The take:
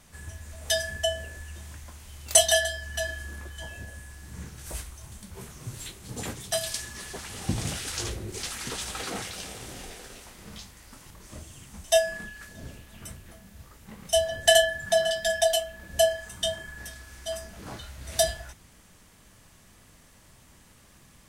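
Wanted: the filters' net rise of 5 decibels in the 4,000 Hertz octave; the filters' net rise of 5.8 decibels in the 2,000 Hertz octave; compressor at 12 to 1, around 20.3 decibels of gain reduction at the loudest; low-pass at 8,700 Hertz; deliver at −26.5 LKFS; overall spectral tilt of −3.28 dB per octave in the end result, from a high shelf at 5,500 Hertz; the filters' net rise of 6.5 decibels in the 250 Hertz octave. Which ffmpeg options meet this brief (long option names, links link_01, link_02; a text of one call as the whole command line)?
ffmpeg -i in.wav -af "lowpass=8700,equalizer=frequency=250:width_type=o:gain=8.5,equalizer=frequency=2000:width_type=o:gain=6.5,equalizer=frequency=4000:width_type=o:gain=7.5,highshelf=frequency=5500:gain=-9,acompressor=threshold=-32dB:ratio=12,volume=11dB" out.wav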